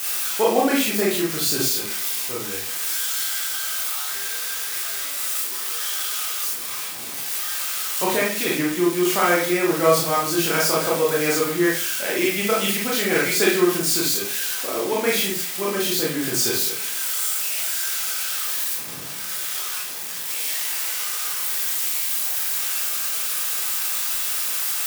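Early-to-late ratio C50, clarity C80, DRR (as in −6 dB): 2.5 dB, 9.0 dB, −5.0 dB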